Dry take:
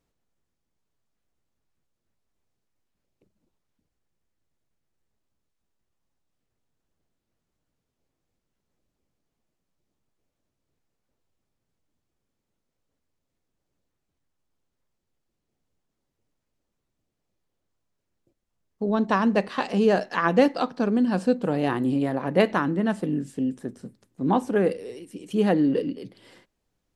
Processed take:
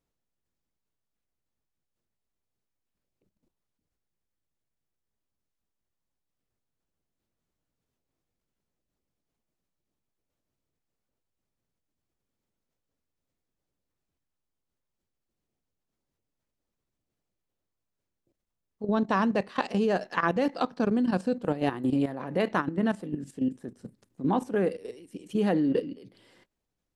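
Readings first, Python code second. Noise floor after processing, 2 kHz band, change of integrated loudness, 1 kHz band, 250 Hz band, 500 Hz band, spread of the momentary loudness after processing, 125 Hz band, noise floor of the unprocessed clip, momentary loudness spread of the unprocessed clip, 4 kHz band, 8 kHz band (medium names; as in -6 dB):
-85 dBFS, -4.0 dB, -4.0 dB, -3.5 dB, -4.0 dB, -5.0 dB, 12 LU, -4.0 dB, -81 dBFS, 10 LU, -4.5 dB, no reading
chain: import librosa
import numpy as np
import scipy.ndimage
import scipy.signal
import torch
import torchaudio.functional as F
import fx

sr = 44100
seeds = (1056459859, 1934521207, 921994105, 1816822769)

y = fx.level_steps(x, sr, step_db=12)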